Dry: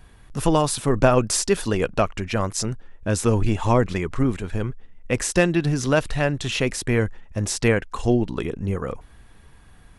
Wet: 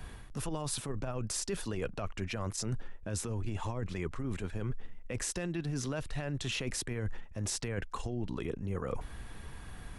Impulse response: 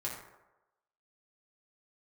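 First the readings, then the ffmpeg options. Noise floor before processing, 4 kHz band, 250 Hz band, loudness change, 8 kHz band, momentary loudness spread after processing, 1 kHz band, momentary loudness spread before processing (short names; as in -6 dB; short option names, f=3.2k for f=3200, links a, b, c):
-49 dBFS, -10.5 dB, -15.5 dB, -14.5 dB, -10.5 dB, 7 LU, -17.5 dB, 9 LU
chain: -filter_complex "[0:a]acrossover=split=130[a][b];[b]acompressor=threshold=-22dB:ratio=4[c];[a][c]amix=inputs=2:normalize=0,alimiter=limit=-17.5dB:level=0:latency=1:release=18,areverse,acompressor=threshold=-36dB:ratio=12,areverse,volume=4dB"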